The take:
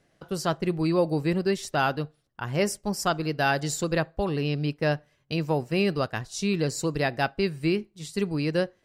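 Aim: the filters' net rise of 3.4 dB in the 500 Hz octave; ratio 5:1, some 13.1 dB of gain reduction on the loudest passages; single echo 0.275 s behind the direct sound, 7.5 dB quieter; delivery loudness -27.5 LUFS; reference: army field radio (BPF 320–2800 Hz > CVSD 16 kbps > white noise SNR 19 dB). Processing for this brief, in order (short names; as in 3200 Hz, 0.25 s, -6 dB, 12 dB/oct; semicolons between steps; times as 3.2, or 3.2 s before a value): bell 500 Hz +5.5 dB; compressor 5:1, threshold -29 dBFS; BPF 320–2800 Hz; echo 0.275 s -7.5 dB; CVSD 16 kbps; white noise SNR 19 dB; gain +8.5 dB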